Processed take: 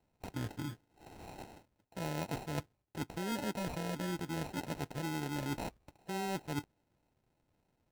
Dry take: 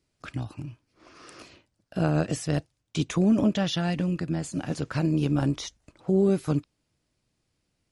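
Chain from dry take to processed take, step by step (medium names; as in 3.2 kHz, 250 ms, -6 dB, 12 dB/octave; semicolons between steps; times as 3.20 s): sample-and-hold 38×; formant shift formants +6 st; reverse; compression 10:1, threshold -33 dBFS, peak gain reduction 16 dB; reverse; trim -1.5 dB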